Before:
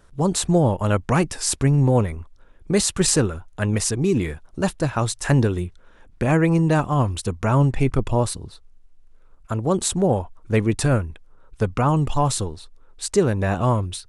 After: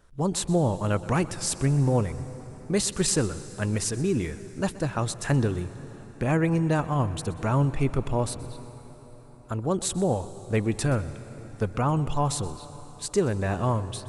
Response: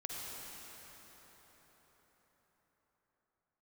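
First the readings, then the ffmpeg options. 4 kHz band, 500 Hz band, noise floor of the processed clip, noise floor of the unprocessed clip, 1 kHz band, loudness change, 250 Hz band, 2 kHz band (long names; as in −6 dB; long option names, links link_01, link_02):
−5.5 dB, −5.5 dB, −46 dBFS, −51 dBFS, −5.5 dB, −5.5 dB, −5.5 dB, −5.5 dB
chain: -filter_complex "[0:a]asplit=2[link_01][link_02];[1:a]atrim=start_sample=2205,adelay=125[link_03];[link_02][link_03]afir=irnorm=-1:irlink=0,volume=-14.5dB[link_04];[link_01][link_04]amix=inputs=2:normalize=0,volume=-5.5dB"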